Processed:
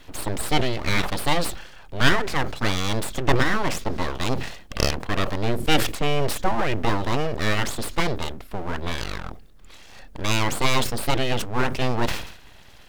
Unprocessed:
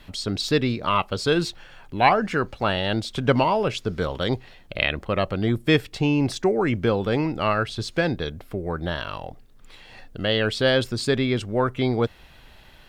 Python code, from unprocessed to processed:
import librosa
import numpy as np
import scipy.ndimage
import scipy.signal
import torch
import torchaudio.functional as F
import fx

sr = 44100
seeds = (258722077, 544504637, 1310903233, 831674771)

y = np.abs(x)
y = fx.sustainer(y, sr, db_per_s=83.0)
y = y * librosa.db_to_amplitude(2.0)